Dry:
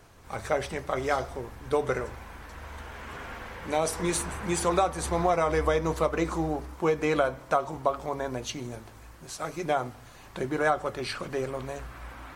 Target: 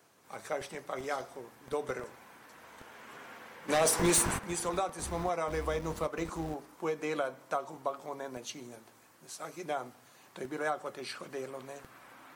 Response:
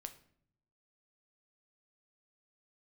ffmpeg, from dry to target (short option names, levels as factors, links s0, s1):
-filter_complex "[0:a]highshelf=f=6400:g=6.5,acrossover=split=140|850|5100[s0][s1][s2][s3];[s0]acrusher=bits=5:mix=0:aa=0.000001[s4];[s4][s1][s2][s3]amix=inputs=4:normalize=0,asplit=3[s5][s6][s7];[s5]afade=t=out:st=3.68:d=0.02[s8];[s6]aeval=exprs='0.251*sin(PI/2*2.51*val(0)/0.251)':c=same,afade=t=in:st=3.68:d=0.02,afade=t=out:st=4.37:d=0.02[s9];[s7]afade=t=in:st=4.37:d=0.02[s10];[s8][s9][s10]amix=inputs=3:normalize=0,volume=0.376"